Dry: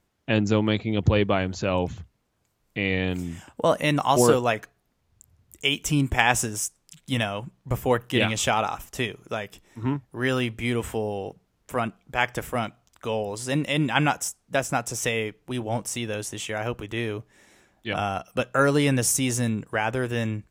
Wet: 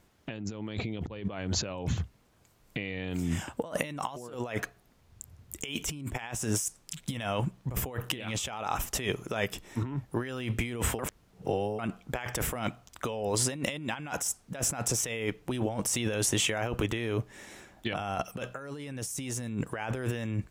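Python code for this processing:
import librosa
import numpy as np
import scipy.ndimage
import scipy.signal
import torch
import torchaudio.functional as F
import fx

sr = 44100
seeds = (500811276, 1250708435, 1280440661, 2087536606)

y = fx.edit(x, sr, fx.reverse_span(start_s=10.99, length_s=0.8), tone=tone)
y = fx.over_compress(y, sr, threshold_db=-34.0, ratio=-1.0)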